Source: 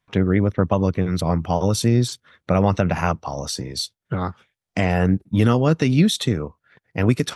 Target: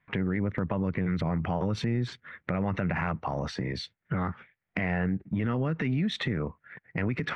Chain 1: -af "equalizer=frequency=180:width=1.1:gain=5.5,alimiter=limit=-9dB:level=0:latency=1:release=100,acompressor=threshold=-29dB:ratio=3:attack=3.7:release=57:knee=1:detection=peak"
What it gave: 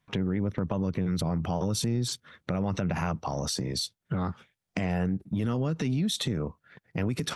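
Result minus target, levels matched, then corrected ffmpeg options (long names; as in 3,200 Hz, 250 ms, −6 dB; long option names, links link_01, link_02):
2,000 Hz band −6.5 dB
-af "lowpass=frequency=2000:width_type=q:width=3.2,equalizer=frequency=180:width=1.1:gain=5.5,alimiter=limit=-9dB:level=0:latency=1:release=100,acompressor=threshold=-29dB:ratio=3:attack=3.7:release=57:knee=1:detection=peak"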